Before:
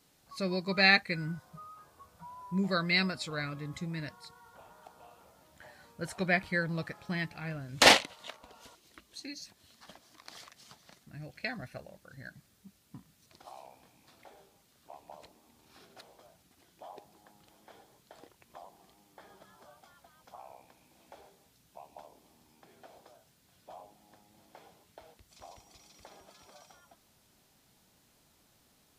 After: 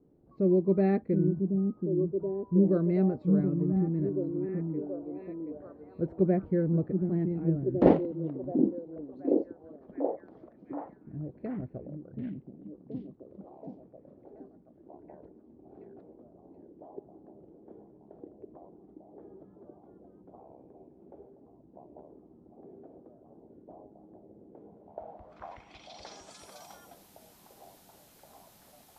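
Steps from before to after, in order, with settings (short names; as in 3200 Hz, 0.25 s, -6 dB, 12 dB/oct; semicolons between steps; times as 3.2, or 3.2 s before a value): delay with a stepping band-pass 0.728 s, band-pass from 230 Hz, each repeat 0.7 oct, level -1 dB; low-pass sweep 370 Hz -> 13000 Hz, 24.68–26.58; gain +5 dB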